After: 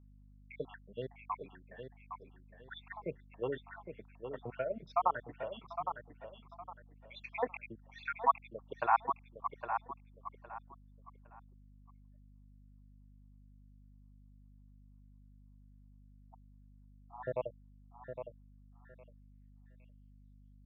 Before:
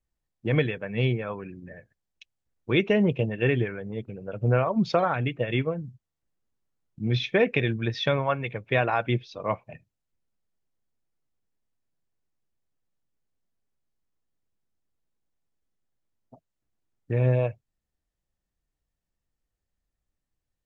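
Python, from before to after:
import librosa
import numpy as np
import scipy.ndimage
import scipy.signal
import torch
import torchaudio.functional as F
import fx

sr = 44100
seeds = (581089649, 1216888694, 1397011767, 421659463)

p1 = fx.spec_dropout(x, sr, seeds[0], share_pct=76)
p2 = p1 + fx.echo_feedback(p1, sr, ms=811, feedback_pct=27, wet_db=-7.5, dry=0)
p3 = fx.filter_sweep_bandpass(p2, sr, from_hz=1000.0, to_hz=3400.0, start_s=18.41, end_s=20.29, q=3.0)
p4 = fx.add_hum(p3, sr, base_hz=50, snr_db=17)
y = p4 * librosa.db_to_amplitude(4.5)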